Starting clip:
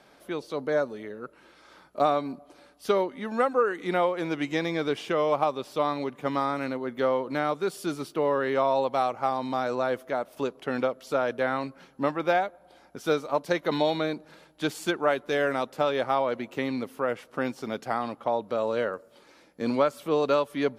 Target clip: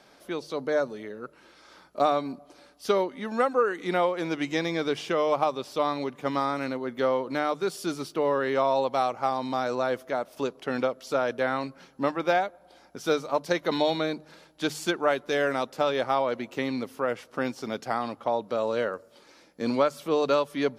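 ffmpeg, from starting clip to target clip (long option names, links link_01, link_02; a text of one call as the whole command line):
ffmpeg -i in.wav -af "equalizer=frequency=5400:width_type=o:width=0.91:gain=5,bandreject=frequency=50:width_type=h:width=6,bandreject=frequency=100:width_type=h:width=6,bandreject=frequency=150:width_type=h:width=6" out.wav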